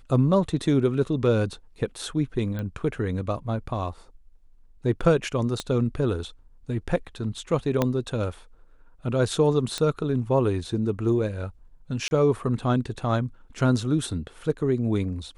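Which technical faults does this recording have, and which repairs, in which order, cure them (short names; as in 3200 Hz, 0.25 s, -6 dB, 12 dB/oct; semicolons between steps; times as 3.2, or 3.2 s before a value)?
2.59 pop -21 dBFS
5.6 pop -15 dBFS
7.82 pop -9 dBFS
9.78 pop -14 dBFS
12.08–12.11 gap 31 ms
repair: de-click; interpolate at 12.08, 31 ms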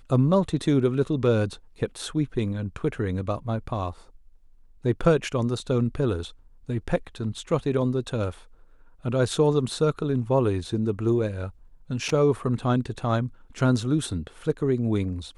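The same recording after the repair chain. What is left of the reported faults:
5.6 pop
7.82 pop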